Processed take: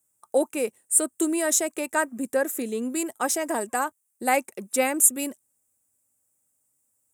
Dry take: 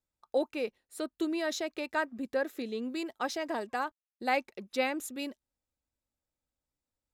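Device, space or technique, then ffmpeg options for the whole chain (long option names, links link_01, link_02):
budget condenser microphone: -filter_complex "[0:a]asettb=1/sr,asplit=3[link_01][link_02][link_03];[link_01]atrim=end=0.574[link_04];[link_02]atrim=start=0.57:end=1.77,asetpts=PTS-STARTPTS,afade=type=in:duration=0.004:curve=qsin,afade=type=out:start_time=1.196:duration=0.004:curve=qsin,equalizer=frequency=8300:width_type=o:width=0.32:gain=5.5[link_05];[link_03]atrim=start=1.766[link_06];[link_04][link_05]acrossfade=duration=0.004:curve1=hsin:curve2=qsin[link_07];[link_07][link_06]acrossfade=duration=0.004:curve1=qsin:curve2=hsin,highpass=frequency=89:width=0.5412,highpass=frequency=89:width=1.3066,highshelf=frequency=6100:width_type=q:width=3:gain=13.5,volume=7dB"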